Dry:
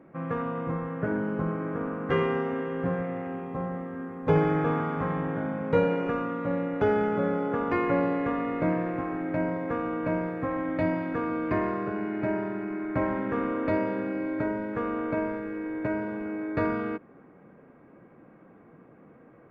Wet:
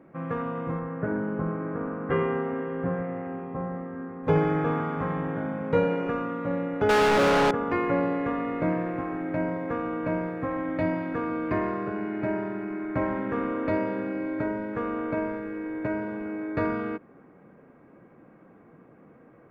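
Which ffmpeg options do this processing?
-filter_complex "[0:a]asettb=1/sr,asplit=3[a][b][c];[a]atrim=end=0.794[d];[b]atrim=start=0.79:end=4.24,asetpts=PTS-STARTPTS,afade=t=in:d=0.004:c=qsin,afade=t=out:st=3.446:d=0.004:c=qsin,lowpass=2.2k[e];[c]atrim=start=4.236[f];[d][e]acrossfade=d=0.004:c1=hsin:c2=qsin[g];[g][f]acrossfade=d=0.004:c1=qsin:c2=hsin,asettb=1/sr,asplit=3[h][i][j];[h]atrim=end=6.894[k];[i]atrim=start=6.89:end=7.51,asetpts=PTS-STARTPTS,afade=t=in:d=0.004:c=qsin,afade=t=out:st=0.616:d=0.004:c=qsin,asplit=2[l][m];[m]highpass=f=720:p=1,volume=37dB,asoftclip=type=tanh:threshold=-14.5dB[n];[l][n]amix=inputs=2:normalize=0,lowpass=f=3.1k:p=1,volume=-6dB[o];[j]atrim=start=7.506[p];[k][o]acrossfade=d=0.004:c1=hsin:c2=qsin[q];[q][p]acrossfade=d=0.004:c1=qsin:c2=hsin"

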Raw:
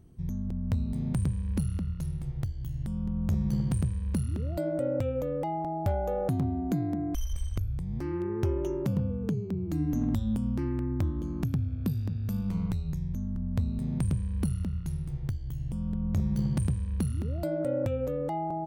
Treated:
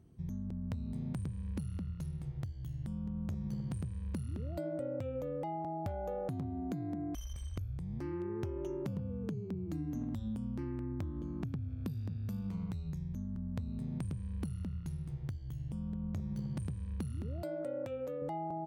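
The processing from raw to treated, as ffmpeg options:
-filter_complex "[0:a]asettb=1/sr,asplit=3[a][b][c];[a]atrim=end=11.044[d];[b]atrim=start=11.04:end=11.7,asetpts=PTS-STARTPTS,afade=t=in:d=0.004:c=qsin,afade=t=out:st=0.656:d=0.004:c=qsin,highshelf=f=5.4k:g=-9.5[e];[c]atrim=start=11.696[f];[d][e]acrossfade=d=0.004:c1=hsin:c2=qsin[g];[g][f]acrossfade=d=0.004:c1=qsin:c2=hsin,asettb=1/sr,asplit=3[h][i][j];[h]atrim=end=17.424[k];[i]atrim=start=17.42:end=18.22,asetpts=PTS-STARTPTS,afade=t=in:d=0.004:c=qsin,afade=t=out:st=0.796:d=0.004:c=qsin,highpass=f=410:p=1[l];[j]atrim=start=18.216[m];[k][l]acrossfade=d=0.004:c1=hsin:c2=qsin[n];[n][m]acrossfade=d=0.004:c1=qsin:c2=hsin,highpass=63,highshelf=f=9.7k:g=-7,acompressor=threshold=-30dB:ratio=6,volume=-4.5dB"

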